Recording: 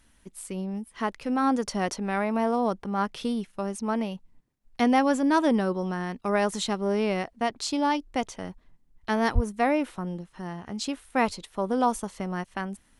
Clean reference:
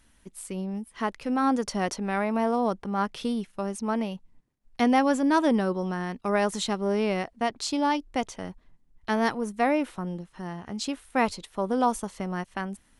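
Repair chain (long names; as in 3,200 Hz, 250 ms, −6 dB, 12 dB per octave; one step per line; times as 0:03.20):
0:09.34–0:09.46: high-pass filter 140 Hz 24 dB per octave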